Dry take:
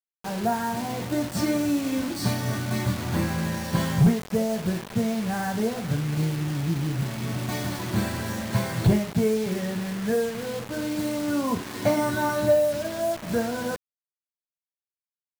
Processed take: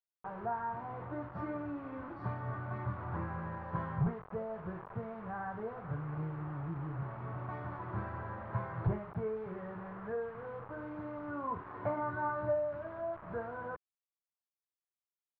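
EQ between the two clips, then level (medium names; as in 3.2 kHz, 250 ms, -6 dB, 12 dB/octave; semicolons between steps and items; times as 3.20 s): four-pole ladder low-pass 1.4 kHz, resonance 45%; dynamic bell 650 Hz, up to -5 dB, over -43 dBFS, Q 1.1; peaking EQ 230 Hz -13 dB 0.79 oct; 0.0 dB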